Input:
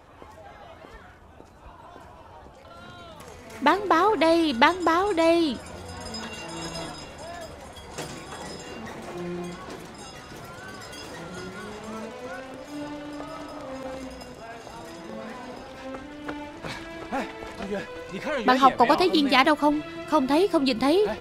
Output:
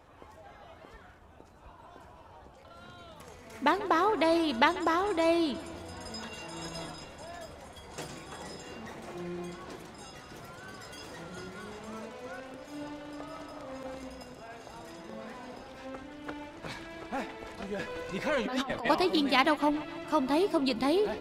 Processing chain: 17.79–18.89 negative-ratio compressor -26 dBFS, ratio -1; on a send: analogue delay 0.14 s, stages 4096, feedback 65%, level -17.5 dB; on the sum: gain -6 dB

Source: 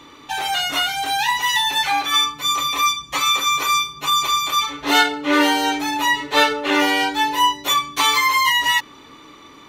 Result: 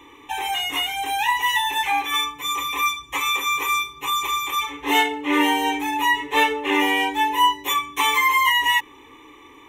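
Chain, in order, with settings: fixed phaser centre 940 Hz, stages 8

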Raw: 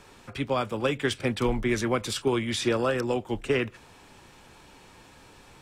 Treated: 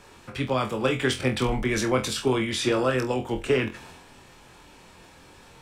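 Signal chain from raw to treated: transient shaper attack +2 dB, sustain +6 dB; flutter echo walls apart 4 m, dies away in 0.23 s

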